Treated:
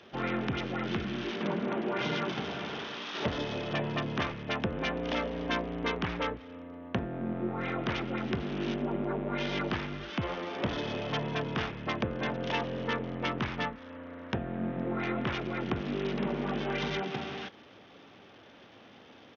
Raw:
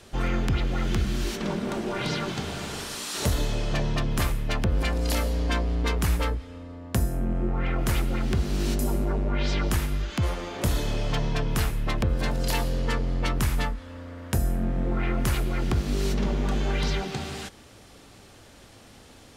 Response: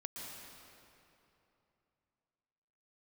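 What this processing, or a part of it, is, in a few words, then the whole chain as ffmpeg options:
Bluetooth headset: -af "highpass=180,aresample=8000,aresample=44100,volume=-1.5dB" -ar 48000 -c:a sbc -b:a 64k

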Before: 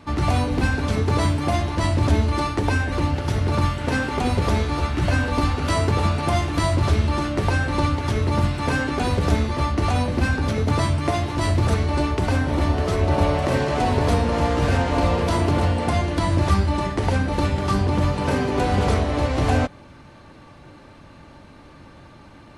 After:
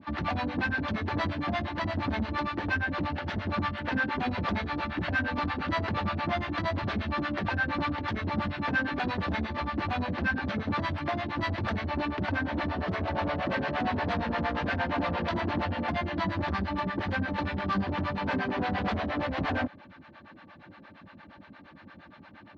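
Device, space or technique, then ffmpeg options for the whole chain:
guitar amplifier with harmonic tremolo: -filter_complex "[0:a]acrossover=split=510[link_01][link_02];[link_01]aeval=exprs='val(0)*(1-1/2+1/2*cos(2*PI*8.6*n/s))':channel_layout=same[link_03];[link_02]aeval=exprs='val(0)*(1-1/2-1/2*cos(2*PI*8.6*n/s))':channel_layout=same[link_04];[link_03][link_04]amix=inputs=2:normalize=0,asoftclip=type=tanh:threshold=-21.5dB,highpass=110,equalizer=frequency=130:width_type=q:width=4:gain=-9,equalizer=frequency=200:width_type=q:width=4:gain=5,equalizer=frequency=440:width_type=q:width=4:gain=-8,equalizer=frequency=1700:width_type=q:width=4:gain=6,lowpass=frequency=4000:width=0.5412,lowpass=frequency=4000:width=1.3066"

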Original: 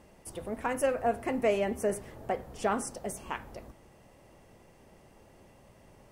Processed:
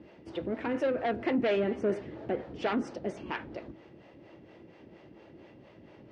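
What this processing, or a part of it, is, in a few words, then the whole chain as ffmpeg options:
guitar amplifier with harmonic tremolo: -filter_complex "[0:a]acrossover=split=430[link_01][link_02];[link_01]aeval=exprs='val(0)*(1-0.7/2+0.7/2*cos(2*PI*4.3*n/s))':channel_layout=same[link_03];[link_02]aeval=exprs='val(0)*(1-0.7/2-0.7/2*cos(2*PI*4.3*n/s))':channel_layout=same[link_04];[link_03][link_04]amix=inputs=2:normalize=0,asoftclip=type=tanh:threshold=-30.5dB,highpass=100,equalizer=frequency=320:width_type=q:width=4:gain=10,equalizer=frequency=770:width_type=q:width=4:gain=-4,equalizer=frequency=1100:width_type=q:width=4:gain=-5,lowpass=frequency=4100:width=0.5412,lowpass=frequency=4100:width=1.3066,volume=7dB"

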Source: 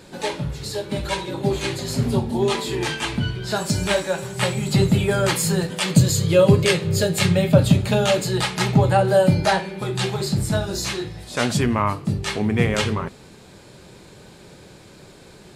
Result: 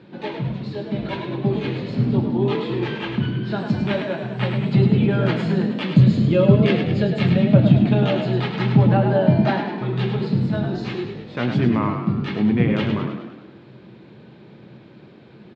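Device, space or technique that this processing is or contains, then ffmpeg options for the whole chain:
frequency-shifting delay pedal into a guitar cabinet: -filter_complex "[0:a]asplit=8[link_01][link_02][link_03][link_04][link_05][link_06][link_07][link_08];[link_02]adelay=103,afreqshift=41,volume=-6.5dB[link_09];[link_03]adelay=206,afreqshift=82,volume=-11.9dB[link_10];[link_04]adelay=309,afreqshift=123,volume=-17.2dB[link_11];[link_05]adelay=412,afreqshift=164,volume=-22.6dB[link_12];[link_06]adelay=515,afreqshift=205,volume=-27.9dB[link_13];[link_07]adelay=618,afreqshift=246,volume=-33.3dB[link_14];[link_08]adelay=721,afreqshift=287,volume=-38.6dB[link_15];[link_01][link_09][link_10][link_11][link_12][link_13][link_14][link_15]amix=inputs=8:normalize=0,highpass=91,equalizer=frequency=130:width_type=q:width=4:gain=10,equalizer=frequency=210:width_type=q:width=4:gain=9,equalizer=frequency=330:width_type=q:width=4:gain=8,lowpass=frequency=3500:width=0.5412,lowpass=frequency=3500:width=1.3066,volume=-5dB"

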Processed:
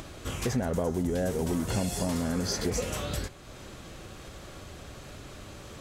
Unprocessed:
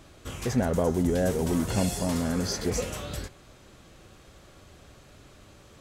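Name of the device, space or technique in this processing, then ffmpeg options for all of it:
upward and downward compression: -af "acompressor=mode=upward:threshold=-40dB:ratio=2.5,acompressor=threshold=-29dB:ratio=4,volume=3dB"

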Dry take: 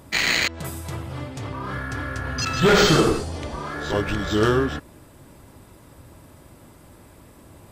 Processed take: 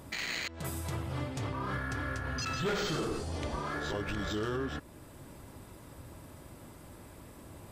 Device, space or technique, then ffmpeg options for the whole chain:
stacked limiters: -af "alimiter=limit=-13dB:level=0:latency=1:release=247,alimiter=limit=-16.5dB:level=0:latency=1:release=17,alimiter=limit=-23dB:level=0:latency=1:release=468,volume=-2.5dB"

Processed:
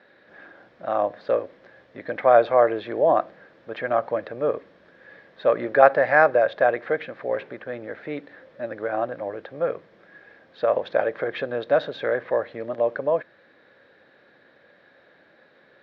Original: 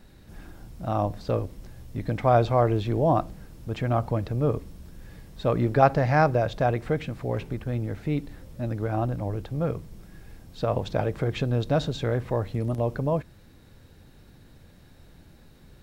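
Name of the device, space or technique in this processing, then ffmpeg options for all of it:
phone earpiece: -af "highpass=480,equalizer=frequency=550:width_type=q:width=4:gain=7,equalizer=frequency=890:width_type=q:width=4:gain=-4,equalizer=frequency=1700:width_type=q:width=4:gain=8,equalizer=frequency=2800:width_type=q:width=4:gain=-6,lowpass=frequency=3400:width=0.5412,lowpass=frequency=3400:width=1.3066,volume=4dB"

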